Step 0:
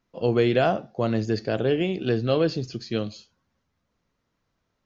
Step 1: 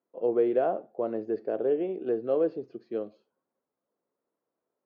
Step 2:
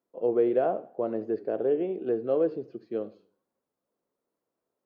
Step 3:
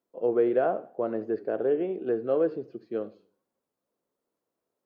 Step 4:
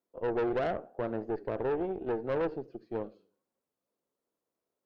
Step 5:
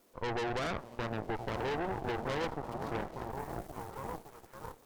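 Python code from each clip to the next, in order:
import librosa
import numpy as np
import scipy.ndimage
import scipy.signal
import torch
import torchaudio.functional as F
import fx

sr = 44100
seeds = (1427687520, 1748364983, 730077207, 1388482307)

y1 = fx.ladder_bandpass(x, sr, hz=520.0, resonance_pct=30)
y1 = y1 * 10.0 ** (6.5 / 20.0)
y2 = fx.low_shelf(y1, sr, hz=130.0, db=7.0)
y2 = fx.echo_warbled(y2, sr, ms=80, feedback_pct=36, rate_hz=2.8, cents=136, wet_db=-19.5)
y3 = fx.dynamic_eq(y2, sr, hz=1500.0, q=1.7, threshold_db=-49.0, ratio=4.0, max_db=6)
y4 = fx.tube_stage(y3, sr, drive_db=26.0, bias=0.7)
y5 = y4 + 0.5 * 10.0 ** (-46.0 / 20.0) * np.sign(y4)
y5 = fx.echo_stepped(y5, sr, ms=561, hz=170.0, octaves=0.7, feedback_pct=70, wet_db=-0.5)
y5 = fx.cheby_harmonics(y5, sr, harmonics=(7, 8), levels_db=(-21, -11), full_scale_db=-18.5)
y5 = y5 * 10.0 ** (-5.5 / 20.0)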